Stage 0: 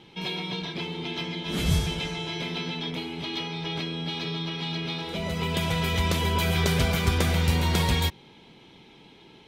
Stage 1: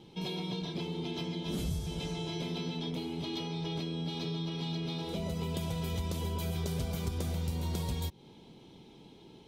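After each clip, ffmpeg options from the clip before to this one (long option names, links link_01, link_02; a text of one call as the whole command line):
ffmpeg -i in.wav -af "equalizer=frequency=1900:width_type=o:width=1.8:gain=-13,acompressor=threshold=-32dB:ratio=5" out.wav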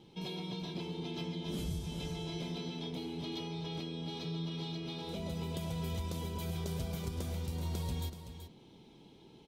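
ffmpeg -i in.wav -af "aecho=1:1:379:0.316,volume=-4dB" out.wav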